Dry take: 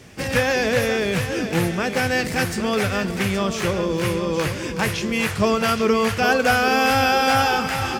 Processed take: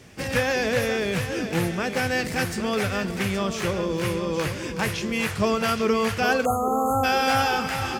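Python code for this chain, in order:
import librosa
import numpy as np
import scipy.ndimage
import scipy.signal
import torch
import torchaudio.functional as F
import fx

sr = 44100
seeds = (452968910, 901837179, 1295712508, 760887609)

y = fx.brickwall_bandstop(x, sr, low_hz=1400.0, high_hz=6300.0, at=(6.44, 7.03), fade=0.02)
y = y * librosa.db_to_amplitude(-3.5)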